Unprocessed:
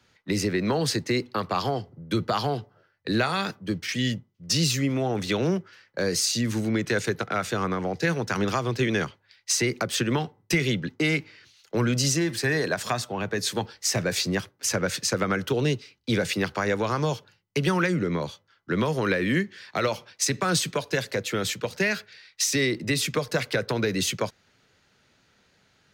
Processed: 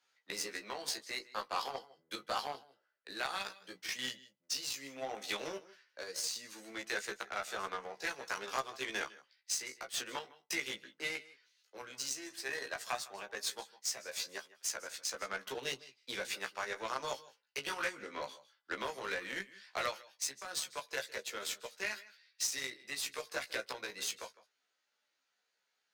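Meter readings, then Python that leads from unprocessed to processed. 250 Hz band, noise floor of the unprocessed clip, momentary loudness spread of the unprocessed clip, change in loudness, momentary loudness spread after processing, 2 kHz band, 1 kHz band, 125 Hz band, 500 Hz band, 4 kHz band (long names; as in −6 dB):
−26.0 dB, −66 dBFS, 7 LU, −13.5 dB, 8 LU, −11.0 dB, −10.5 dB, −34.5 dB, −17.0 dB, −10.5 dB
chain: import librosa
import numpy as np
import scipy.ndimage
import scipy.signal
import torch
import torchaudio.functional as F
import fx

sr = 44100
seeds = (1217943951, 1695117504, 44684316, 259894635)

y = scipy.signal.sosfilt(scipy.signal.butter(2, 710.0, 'highpass', fs=sr, output='sos'), x)
y = fx.peak_eq(y, sr, hz=1700.0, db=-3.0, octaves=2.9)
y = fx.rider(y, sr, range_db=5, speed_s=0.5)
y = y + 10.0 ** (-14.5 / 20.0) * np.pad(y, (int(156 * sr / 1000.0), 0))[:len(y)]
y = fx.chorus_voices(y, sr, voices=2, hz=0.14, base_ms=16, depth_ms=3.1, mix_pct=30)
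y = fx.doubler(y, sr, ms=15.0, db=-2.5)
y = fx.cheby_harmonics(y, sr, harmonics=(5, 7), levels_db=(-13, -13), full_scale_db=-14.0)
y = y * 10.0 ** (-8.0 / 20.0)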